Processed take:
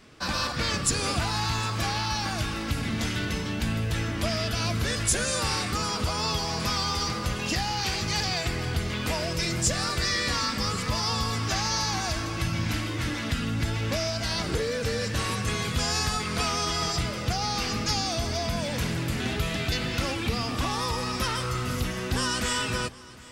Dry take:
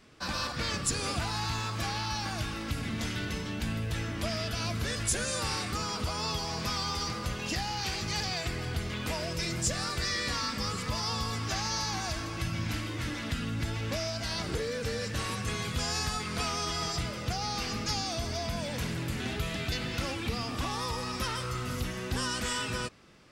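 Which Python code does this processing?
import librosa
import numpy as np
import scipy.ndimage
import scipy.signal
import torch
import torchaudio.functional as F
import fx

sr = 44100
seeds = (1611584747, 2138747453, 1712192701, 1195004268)

y = fx.echo_feedback(x, sr, ms=759, feedback_pct=59, wet_db=-21.5)
y = y * librosa.db_to_amplitude(5.0)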